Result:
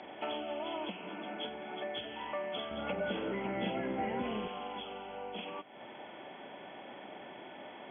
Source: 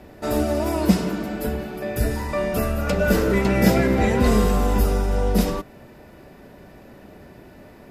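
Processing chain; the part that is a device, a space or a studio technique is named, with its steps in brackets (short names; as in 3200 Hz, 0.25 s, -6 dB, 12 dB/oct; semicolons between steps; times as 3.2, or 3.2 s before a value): hearing aid with frequency lowering (nonlinear frequency compression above 2100 Hz 4:1; compressor 4:1, threshold -36 dBFS, peak gain reduction 21 dB; speaker cabinet 340–6700 Hz, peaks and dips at 430 Hz -4 dB, 830 Hz +8 dB, 4400 Hz +9 dB); 2.71–4.48 low shelf 350 Hz +11.5 dB; gain -1 dB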